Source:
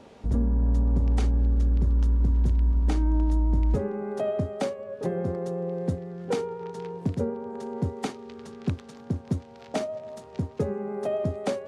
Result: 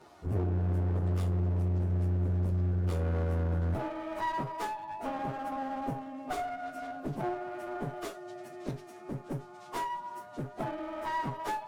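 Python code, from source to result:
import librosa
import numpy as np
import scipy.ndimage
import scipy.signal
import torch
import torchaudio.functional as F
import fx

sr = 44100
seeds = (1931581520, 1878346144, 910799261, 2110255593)

y = fx.pitch_bins(x, sr, semitones=7.5)
y = fx.clip_asym(y, sr, top_db=-36.5, bottom_db=-19.0)
y = fx.comb_fb(y, sr, f0_hz=51.0, decay_s=0.2, harmonics='all', damping=0.0, mix_pct=70)
y = y * 10.0 ** (2.0 / 20.0)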